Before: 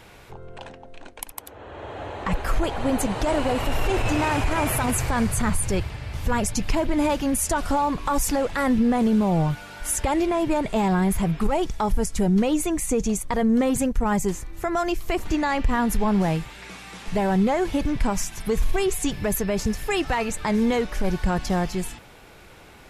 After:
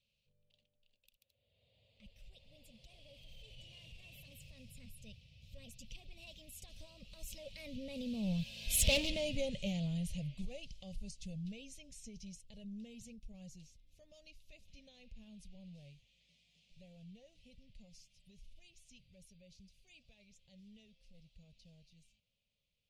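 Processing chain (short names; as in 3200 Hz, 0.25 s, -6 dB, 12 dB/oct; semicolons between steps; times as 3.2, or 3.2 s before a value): Doppler pass-by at 8.93, 40 m/s, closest 3.7 m; hard clip -27.5 dBFS, distortion -7 dB; EQ curve 220 Hz 0 dB, 340 Hz -22 dB, 550 Hz -1 dB, 840 Hz -25 dB, 1500 Hz -30 dB, 2600 Hz +7 dB, 4100 Hz +8 dB, 9400 Hz -4 dB; gain +4.5 dB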